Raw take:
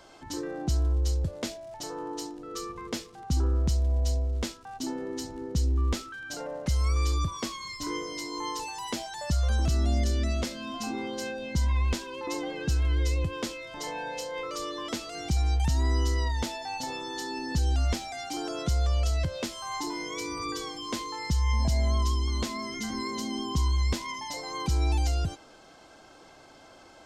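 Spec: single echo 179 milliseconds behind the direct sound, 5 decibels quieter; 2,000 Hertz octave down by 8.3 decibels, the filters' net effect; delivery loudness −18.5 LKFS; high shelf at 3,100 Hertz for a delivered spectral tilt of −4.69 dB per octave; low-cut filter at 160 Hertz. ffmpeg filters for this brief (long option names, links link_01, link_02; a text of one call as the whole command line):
ffmpeg -i in.wav -af "highpass=160,equalizer=frequency=2000:width_type=o:gain=-8.5,highshelf=frequency=3100:gain=-5,aecho=1:1:179:0.562,volume=17.5dB" out.wav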